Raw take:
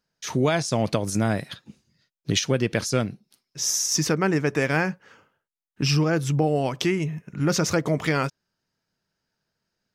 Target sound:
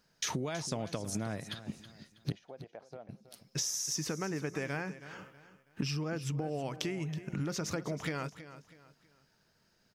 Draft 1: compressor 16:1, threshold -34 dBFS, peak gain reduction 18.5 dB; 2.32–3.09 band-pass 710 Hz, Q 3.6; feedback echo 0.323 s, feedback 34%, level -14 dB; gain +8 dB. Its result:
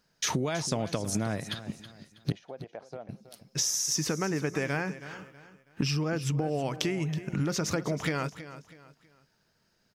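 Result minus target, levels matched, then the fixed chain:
compressor: peak gain reduction -6 dB
compressor 16:1, threshold -40.5 dBFS, peak gain reduction 24.5 dB; 2.32–3.09 band-pass 710 Hz, Q 3.6; feedback echo 0.323 s, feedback 34%, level -14 dB; gain +8 dB

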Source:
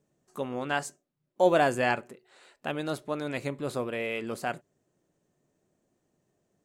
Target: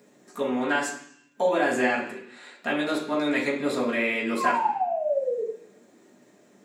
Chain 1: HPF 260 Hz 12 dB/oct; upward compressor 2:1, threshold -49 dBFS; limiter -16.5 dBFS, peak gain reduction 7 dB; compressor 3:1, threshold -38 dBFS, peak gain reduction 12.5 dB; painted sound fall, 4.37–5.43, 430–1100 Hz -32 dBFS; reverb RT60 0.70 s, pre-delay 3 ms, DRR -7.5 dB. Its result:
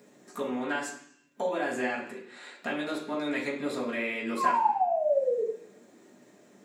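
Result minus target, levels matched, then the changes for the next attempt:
compressor: peak gain reduction +7.5 dB
change: compressor 3:1, threshold -27 dBFS, peak gain reduction 5 dB

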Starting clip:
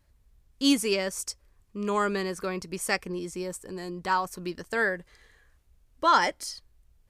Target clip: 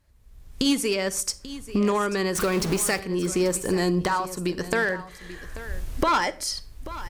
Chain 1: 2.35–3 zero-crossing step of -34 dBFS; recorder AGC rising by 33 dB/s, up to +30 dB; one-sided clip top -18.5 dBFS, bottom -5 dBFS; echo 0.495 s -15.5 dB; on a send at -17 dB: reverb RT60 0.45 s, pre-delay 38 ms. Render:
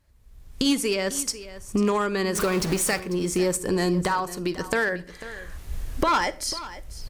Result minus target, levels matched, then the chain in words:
echo 0.342 s early
2.35–3 zero-crossing step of -34 dBFS; recorder AGC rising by 33 dB/s, up to +30 dB; one-sided clip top -18.5 dBFS, bottom -5 dBFS; echo 0.837 s -15.5 dB; on a send at -17 dB: reverb RT60 0.45 s, pre-delay 38 ms

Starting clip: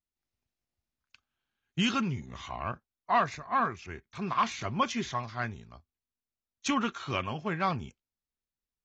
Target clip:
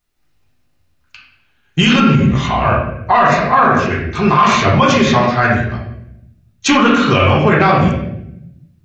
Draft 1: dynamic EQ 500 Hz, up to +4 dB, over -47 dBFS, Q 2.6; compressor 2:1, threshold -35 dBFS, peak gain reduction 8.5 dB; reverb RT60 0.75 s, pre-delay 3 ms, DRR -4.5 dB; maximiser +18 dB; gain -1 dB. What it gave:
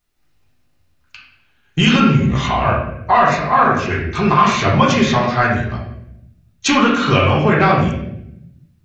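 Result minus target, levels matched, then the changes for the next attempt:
compressor: peak gain reduction +8.5 dB
remove: compressor 2:1, threshold -35 dBFS, peak gain reduction 8.5 dB

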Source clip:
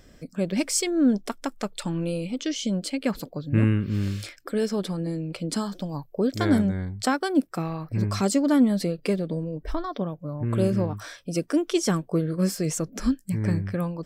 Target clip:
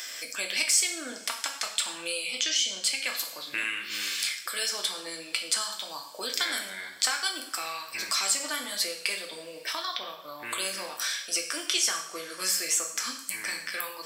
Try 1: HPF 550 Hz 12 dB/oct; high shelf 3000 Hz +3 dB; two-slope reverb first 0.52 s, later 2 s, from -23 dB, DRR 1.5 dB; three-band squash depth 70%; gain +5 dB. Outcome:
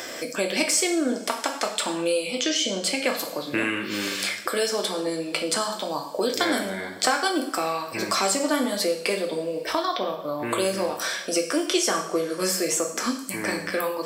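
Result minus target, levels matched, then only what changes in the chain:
500 Hz band +13.0 dB
change: HPF 1700 Hz 12 dB/oct

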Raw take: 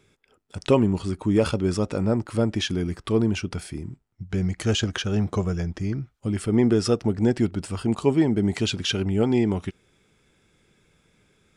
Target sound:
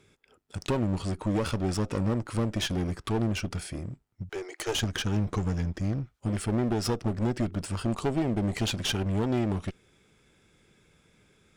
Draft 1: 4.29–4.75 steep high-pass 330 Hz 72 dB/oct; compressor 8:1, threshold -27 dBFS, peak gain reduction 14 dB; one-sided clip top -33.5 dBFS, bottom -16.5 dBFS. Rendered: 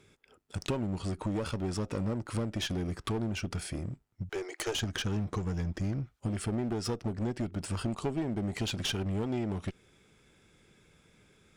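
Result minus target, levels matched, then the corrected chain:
compressor: peak gain reduction +7 dB
4.29–4.75 steep high-pass 330 Hz 72 dB/oct; compressor 8:1, threshold -19 dBFS, peak gain reduction 7 dB; one-sided clip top -33.5 dBFS, bottom -16.5 dBFS

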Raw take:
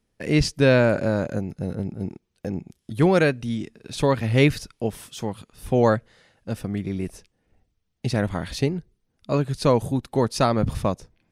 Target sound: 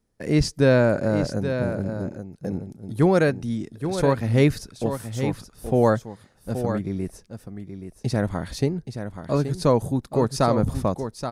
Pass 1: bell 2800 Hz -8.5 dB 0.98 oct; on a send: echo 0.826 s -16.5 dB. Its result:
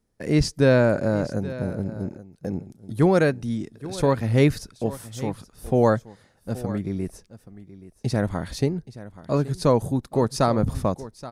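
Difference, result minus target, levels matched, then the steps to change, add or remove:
echo-to-direct -7.5 dB
change: echo 0.826 s -9 dB

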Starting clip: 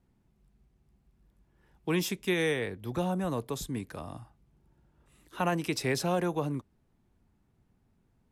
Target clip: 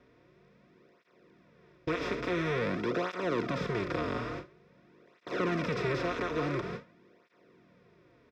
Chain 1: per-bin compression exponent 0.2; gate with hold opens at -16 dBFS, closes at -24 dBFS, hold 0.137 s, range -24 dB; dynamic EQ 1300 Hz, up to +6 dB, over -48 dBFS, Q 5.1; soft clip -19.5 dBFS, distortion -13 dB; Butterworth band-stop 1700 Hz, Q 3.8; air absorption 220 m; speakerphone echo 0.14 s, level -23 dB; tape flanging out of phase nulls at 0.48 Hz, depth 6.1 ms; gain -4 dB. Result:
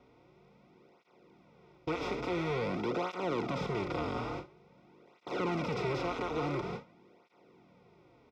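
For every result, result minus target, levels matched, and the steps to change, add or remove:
soft clip: distortion +12 dB; 2000 Hz band -3.0 dB
change: soft clip -10.5 dBFS, distortion -25 dB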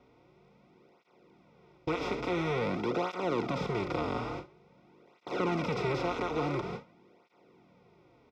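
2000 Hz band -3.0 dB
change: Butterworth band-stop 820 Hz, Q 3.8

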